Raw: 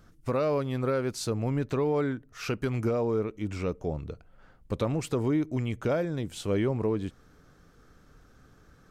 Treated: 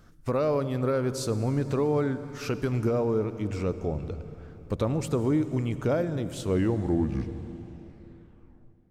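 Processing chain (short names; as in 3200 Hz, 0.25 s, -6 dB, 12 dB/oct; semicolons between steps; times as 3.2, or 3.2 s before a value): tape stop at the end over 2.53 s; on a send at -13 dB: low shelf 220 Hz +8.5 dB + reverb RT60 3.4 s, pre-delay 63 ms; on the sum: dynamic EQ 2600 Hz, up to -4 dB, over -47 dBFS, Q 0.84; gain +1.5 dB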